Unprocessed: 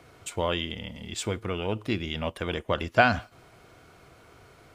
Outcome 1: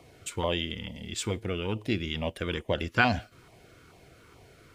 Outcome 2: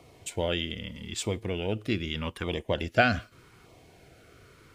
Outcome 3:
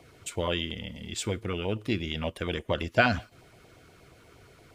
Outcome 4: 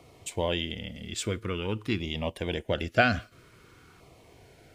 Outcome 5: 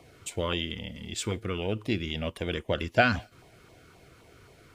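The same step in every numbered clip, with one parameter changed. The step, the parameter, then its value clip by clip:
auto-filter notch, speed: 2.3, 0.82, 8.5, 0.5, 3.8 Hertz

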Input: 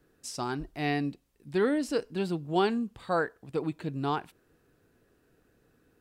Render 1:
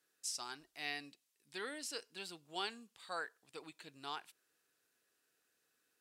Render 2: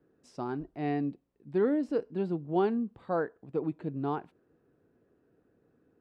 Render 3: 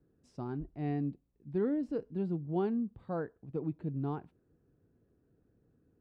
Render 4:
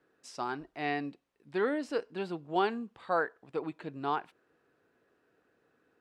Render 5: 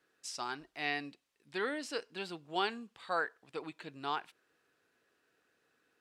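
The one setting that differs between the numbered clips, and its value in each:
resonant band-pass, frequency: 7,900, 320, 110, 1,100, 2,800 Hertz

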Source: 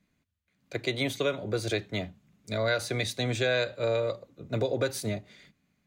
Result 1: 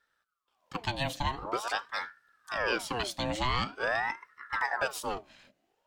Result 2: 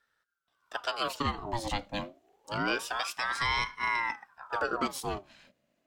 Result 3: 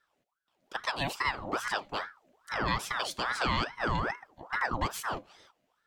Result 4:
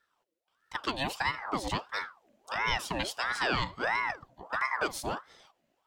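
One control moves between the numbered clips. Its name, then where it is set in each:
ring modulator whose carrier an LFO sweeps, at: 0.46, 0.27, 2.4, 1.5 Hertz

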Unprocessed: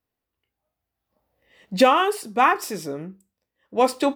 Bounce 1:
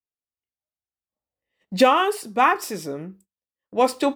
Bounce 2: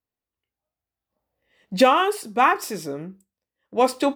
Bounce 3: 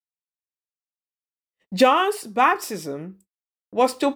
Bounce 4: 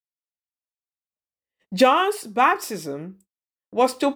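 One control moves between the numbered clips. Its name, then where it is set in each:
noise gate, range: −21, −7, −59, −34 decibels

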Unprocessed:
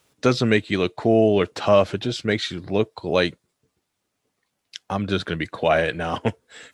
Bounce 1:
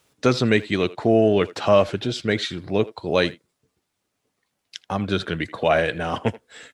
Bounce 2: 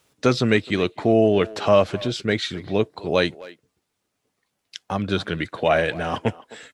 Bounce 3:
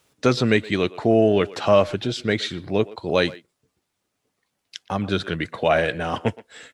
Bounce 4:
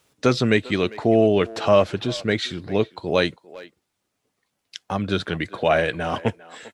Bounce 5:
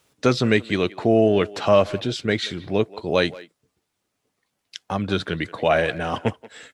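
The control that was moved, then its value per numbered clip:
far-end echo of a speakerphone, delay time: 80, 260, 120, 400, 180 milliseconds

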